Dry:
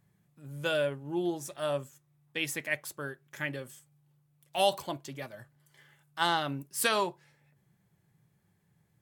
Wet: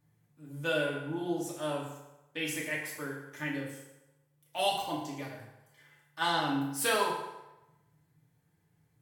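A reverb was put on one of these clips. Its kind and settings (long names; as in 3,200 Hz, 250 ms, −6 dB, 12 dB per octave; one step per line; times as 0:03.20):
feedback delay network reverb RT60 1 s, low-frequency decay 0.75×, high-frequency decay 0.75×, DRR −4.5 dB
level −6 dB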